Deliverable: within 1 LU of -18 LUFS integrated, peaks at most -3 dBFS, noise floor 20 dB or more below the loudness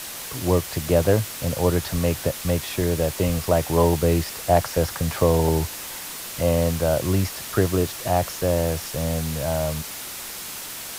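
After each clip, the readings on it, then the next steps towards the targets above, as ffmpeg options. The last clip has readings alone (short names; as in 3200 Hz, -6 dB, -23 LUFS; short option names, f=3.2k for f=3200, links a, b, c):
noise floor -35 dBFS; noise floor target -44 dBFS; loudness -23.5 LUFS; peak -5.0 dBFS; loudness target -18.0 LUFS
-> -af "afftdn=nr=9:nf=-35"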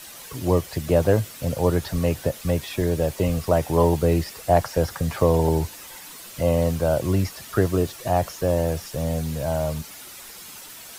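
noise floor -41 dBFS; noise floor target -44 dBFS
-> -af "afftdn=nr=6:nf=-41"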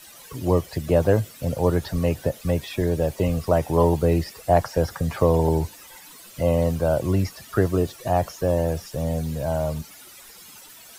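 noise floor -46 dBFS; loudness -23.5 LUFS; peak -5.0 dBFS; loudness target -18.0 LUFS
-> -af "volume=5.5dB,alimiter=limit=-3dB:level=0:latency=1"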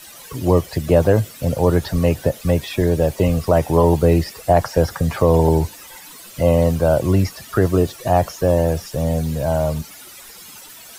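loudness -18.5 LUFS; peak -3.0 dBFS; noise floor -40 dBFS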